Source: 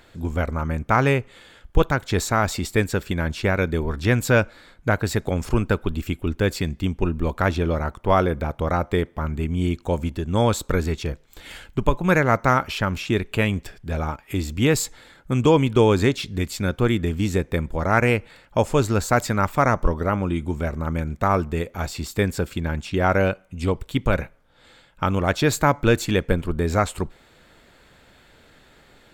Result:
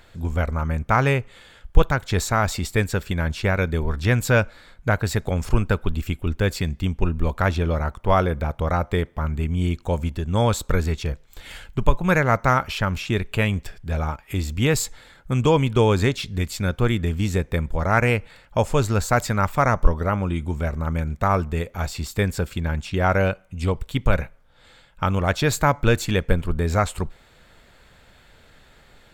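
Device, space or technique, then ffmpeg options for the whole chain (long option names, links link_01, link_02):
low shelf boost with a cut just above: -af "lowshelf=frequency=69:gain=6.5,equalizer=frequency=310:width_type=o:width=0.85:gain=-5"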